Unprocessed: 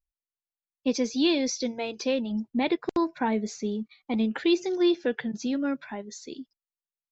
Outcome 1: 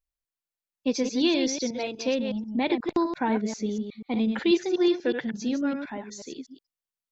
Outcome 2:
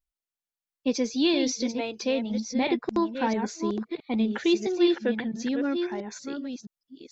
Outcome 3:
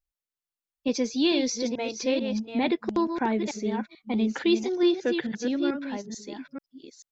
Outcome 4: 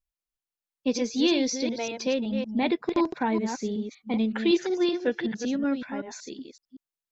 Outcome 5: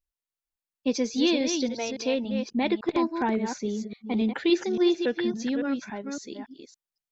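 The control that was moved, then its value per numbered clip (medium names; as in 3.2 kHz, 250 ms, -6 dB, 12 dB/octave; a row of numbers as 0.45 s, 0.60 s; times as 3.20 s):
chunks repeated in reverse, time: 122 ms, 667 ms, 439 ms, 188 ms, 281 ms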